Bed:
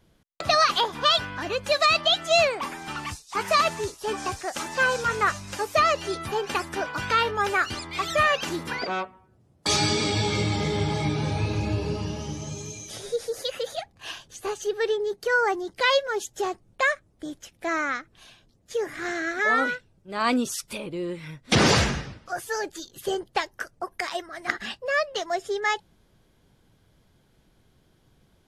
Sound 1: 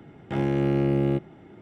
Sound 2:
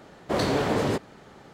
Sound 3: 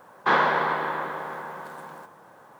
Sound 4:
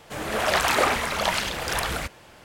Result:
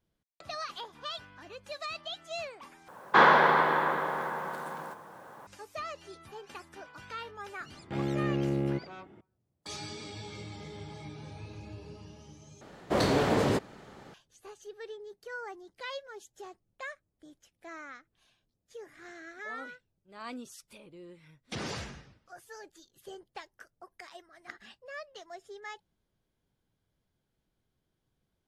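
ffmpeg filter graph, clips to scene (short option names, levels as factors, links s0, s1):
-filter_complex "[0:a]volume=0.119[s0];[3:a]acontrast=25[s1];[s0]asplit=3[s2][s3][s4];[s2]atrim=end=2.884[s5];[s1]atrim=end=2.59,asetpts=PTS-STARTPTS,volume=0.668[s6];[s3]atrim=start=5.466:end=12.614[s7];[2:a]atrim=end=1.53,asetpts=PTS-STARTPTS,volume=0.841[s8];[s4]atrim=start=14.136[s9];[1:a]atrim=end=1.61,asetpts=PTS-STARTPTS,volume=0.447,afade=t=in:d=0.004:c=hsin,afade=t=out:st=1.606:d=0.004:c=hsin,adelay=7600[s10];[s5][s6]acrossfade=d=0.004:c1=hsin:c2=hsin[s11];[s11][s7]acrossfade=d=0.004:c1=hsin:c2=hsin[s12];[s12][s8]acrossfade=d=0.004:c1=hsin:c2=hsin[s13];[s13][s9]acrossfade=d=0.004:c1=hsin:c2=hsin[s14];[s14][s10]amix=inputs=2:normalize=0"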